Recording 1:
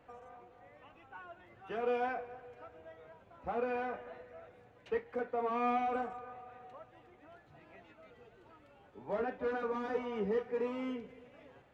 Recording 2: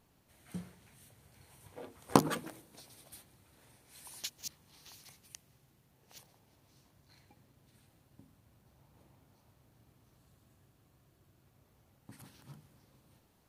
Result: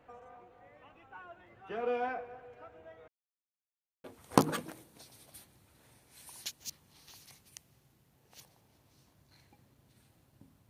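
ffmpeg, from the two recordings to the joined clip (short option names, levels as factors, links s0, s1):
-filter_complex "[0:a]apad=whole_dur=10.69,atrim=end=10.69,asplit=2[s0][s1];[s0]atrim=end=3.08,asetpts=PTS-STARTPTS,afade=t=out:st=3.076:d=0.004:c=hsin[s2];[s1]atrim=start=3.08:end=4.04,asetpts=PTS-STARTPTS,volume=0[s3];[1:a]atrim=start=1.82:end=8.47,asetpts=PTS-STARTPTS,afade=t=in:d=0.004:c=hsin[s4];[s2][s3][s4]concat=n=3:v=0:a=1"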